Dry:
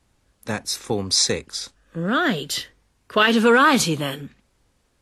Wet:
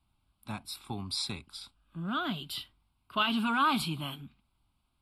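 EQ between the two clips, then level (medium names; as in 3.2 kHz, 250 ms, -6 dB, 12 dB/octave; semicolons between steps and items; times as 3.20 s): static phaser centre 1.8 kHz, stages 6; -8.5 dB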